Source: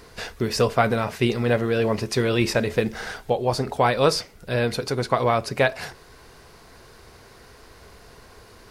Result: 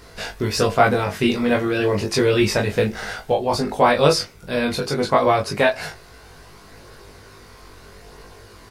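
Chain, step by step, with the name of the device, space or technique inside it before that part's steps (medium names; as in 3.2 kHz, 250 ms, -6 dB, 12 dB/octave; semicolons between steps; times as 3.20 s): double-tracked vocal (doubling 20 ms -4 dB; chorus 0.33 Hz, delay 18.5 ms, depth 2.4 ms); trim +5 dB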